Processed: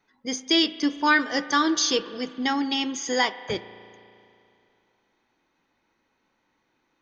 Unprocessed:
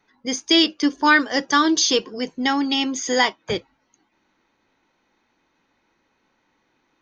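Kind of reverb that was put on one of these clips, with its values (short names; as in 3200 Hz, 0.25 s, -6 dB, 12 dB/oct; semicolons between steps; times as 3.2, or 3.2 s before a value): spring tank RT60 2.6 s, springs 35 ms, chirp 35 ms, DRR 14 dB; gain -4.5 dB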